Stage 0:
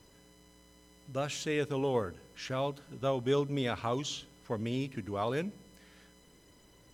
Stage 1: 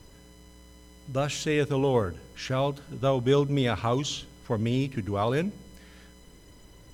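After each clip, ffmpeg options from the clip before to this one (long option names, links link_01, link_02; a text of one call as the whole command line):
ffmpeg -i in.wav -af "lowshelf=frequency=93:gain=11,volume=5.5dB" out.wav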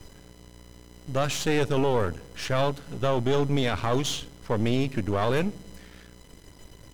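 ffmpeg -i in.wav -af "aeval=exprs='if(lt(val(0),0),0.251*val(0),val(0))':channel_layout=same,alimiter=limit=-19.5dB:level=0:latency=1:release=12,volume=6dB" out.wav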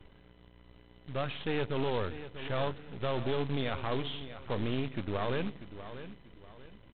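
ffmpeg -i in.wav -af "aresample=8000,acrusher=bits=3:mode=log:mix=0:aa=0.000001,aresample=44100,aecho=1:1:641|1282|1923:0.237|0.0783|0.0258,volume=-8.5dB" out.wav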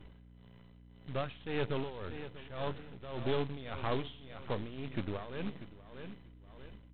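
ffmpeg -i in.wav -af "tremolo=f=1.8:d=0.81,aeval=exprs='val(0)+0.00178*(sin(2*PI*60*n/s)+sin(2*PI*2*60*n/s)/2+sin(2*PI*3*60*n/s)/3+sin(2*PI*4*60*n/s)/4+sin(2*PI*5*60*n/s)/5)':channel_layout=same" out.wav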